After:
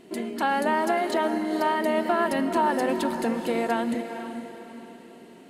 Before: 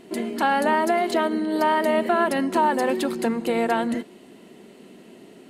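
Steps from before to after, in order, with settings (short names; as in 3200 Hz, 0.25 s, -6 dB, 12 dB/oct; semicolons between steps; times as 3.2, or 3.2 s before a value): 2.32–3.25 low shelf 84 Hz +11 dB; on a send: diffused feedback echo 0.453 s, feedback 41%, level -9 dB; on the sum: gain -3.5 dB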